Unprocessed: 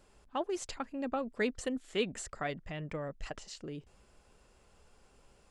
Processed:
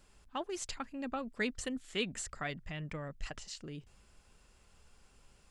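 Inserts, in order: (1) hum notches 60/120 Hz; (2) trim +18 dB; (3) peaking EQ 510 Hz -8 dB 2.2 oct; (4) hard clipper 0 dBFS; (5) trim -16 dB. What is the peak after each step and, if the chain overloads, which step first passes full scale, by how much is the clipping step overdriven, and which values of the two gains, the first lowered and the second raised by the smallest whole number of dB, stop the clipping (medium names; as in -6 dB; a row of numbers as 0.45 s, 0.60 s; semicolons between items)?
-18.5 dBFS, -0.5 dBFS, -3.0 dBFS, -3.0 dBFS, -19.0 dBFS; nothing clips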